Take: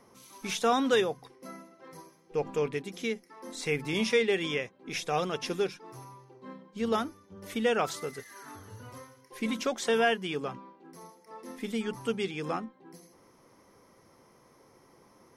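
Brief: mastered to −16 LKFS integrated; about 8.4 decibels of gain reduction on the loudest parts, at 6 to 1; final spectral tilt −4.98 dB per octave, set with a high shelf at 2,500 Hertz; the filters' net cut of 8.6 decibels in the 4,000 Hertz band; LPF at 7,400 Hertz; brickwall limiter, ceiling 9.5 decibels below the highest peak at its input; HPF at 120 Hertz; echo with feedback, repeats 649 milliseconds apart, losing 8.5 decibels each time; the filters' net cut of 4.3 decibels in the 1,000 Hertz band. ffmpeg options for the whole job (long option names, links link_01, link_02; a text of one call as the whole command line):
ffmpeg -i in.wav -af "highpass=120,lowpass=7400,equalizer=frequency=1000:width_type=o:gain=-5.5,highshelf=frequency=2500:gain=-3,equalizer=frequency=4000:width_type=o:gain=-8.5,acompressor=threshold=-32dB:ratio=6,alimiter=level_in=7.5dB:limit=-24dB:level=0:latency=1,volume=-7.5dB,aecho=1:1:649|1298|1947|2596:0.376|0.143|0.0543|0.0206,volume=26.5dB" out.wav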